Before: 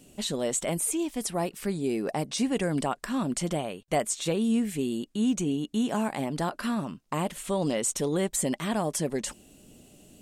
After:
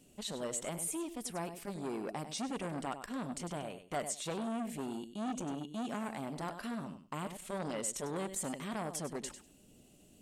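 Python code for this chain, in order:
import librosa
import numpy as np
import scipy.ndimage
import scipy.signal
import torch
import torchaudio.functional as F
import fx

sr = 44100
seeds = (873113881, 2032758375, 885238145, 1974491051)

y = fx.echo_feedback(x, sr, ms=98, feedback_pct=16, wet_db=-11)
y = fx.transformer_sat(y, sr, knee_hz=1000.0)
y = y * librosa.db_to_amplitude(-8.5)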